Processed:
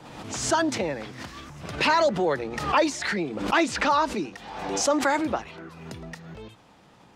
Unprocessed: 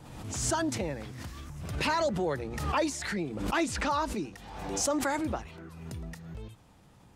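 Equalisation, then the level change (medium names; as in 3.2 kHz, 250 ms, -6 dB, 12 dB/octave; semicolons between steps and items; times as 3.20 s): three-band isolator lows -15 dB, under 170 Hz, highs -12 dB, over 6.2 kHz; peaking EQ 260 Hz -2.5 dB 1.7 oct; +8.0 dB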